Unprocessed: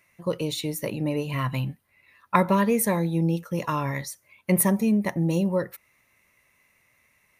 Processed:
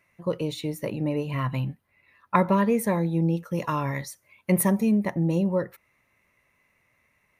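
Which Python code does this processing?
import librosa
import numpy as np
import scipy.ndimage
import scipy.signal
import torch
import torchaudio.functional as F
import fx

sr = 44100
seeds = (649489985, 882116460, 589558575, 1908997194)

y = fx.high_shelf(x, sr, hz=3200.0, db=fx.steps((0.0, -9.5), (3.43, -4.0), (5.04, -10.5)))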